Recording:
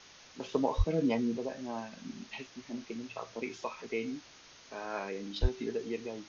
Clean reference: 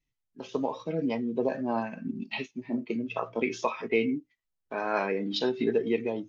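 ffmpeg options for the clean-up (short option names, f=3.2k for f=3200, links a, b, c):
-filter_complex "[0:a]asplit=3[a][b][c];[a]afade=t=out:st=0.77:d=0.02[d];[b]highpass=f=140:w=0.5412,highpass=f=140:w=1.3066,afade=t=in:st=0.77:d=0.02,afade=t=out:st=0.89:d=0.02[e];[c]afade=t=in:st=0.89:d=0.02[f];[d][e][f]amix=inputs=3:normalize=0,asplit=3[g][h][i];[g]afade=t=out:st=5.41:d=0.02[j];[h]highpass=f=140:w=0.5412,highpass=f=140:w=1.3066,afade=t=in:st=5.41:d=0.02,afade=t=out:st=5.53:d=0.02[k];[i]afade=t=in:st=5.53:d=0.02[l];[j][k][l]amix=inputs=3:normalize=0,afwtdn=0.0028,asetnsamples=n=441:p=0,asendcmd='1.37 volume volume 9.5dB',volume=0dB"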